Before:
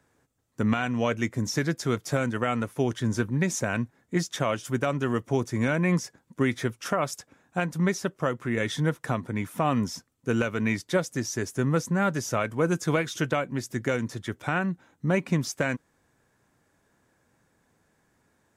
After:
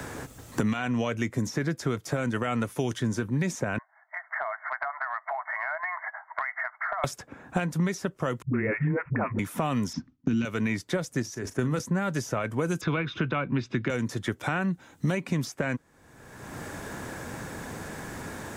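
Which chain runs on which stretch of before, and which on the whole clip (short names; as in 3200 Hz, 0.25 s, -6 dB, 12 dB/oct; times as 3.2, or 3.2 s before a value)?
3.78–7.04 brick-wall FIR band-pass 610–2200 Hz + compressor 4:1, threshold -48 dBFS
8.42–9.39 steep low-pass 2500 Hz 96 dB/oct + dispersion highs, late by 0.119 s, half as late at 310 Hz
9.93–10.45 steep low-pass 5900 Hz + resonant low shelf 360 Hz +9.5 dB, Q 3 + gate with hold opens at -37 dBFS, closes at -44 dBFS
11.22–11.8 level quantiser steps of 13 dB + doubler 40 ms -12.5 dB
12.81–13.9 LPF 3400 Hz 24 dB/oct + comb 0.8 ms, depth 38% + three-band squash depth 70%
whole clip: limiter -16.5 dBFS; three-band squash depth 100%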